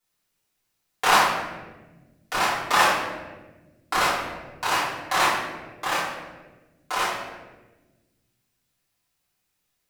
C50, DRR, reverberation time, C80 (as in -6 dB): 1.5 dB, -10.0 dB, 1.3 s, 4.5 dB